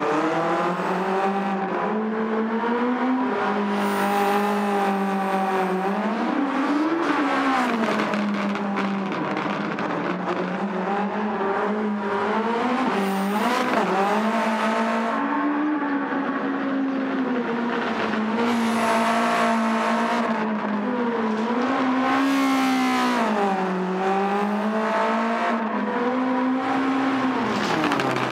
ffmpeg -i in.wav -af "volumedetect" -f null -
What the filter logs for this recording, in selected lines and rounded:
mean_volume: -22.6 dB
max_volume: -6.2 dB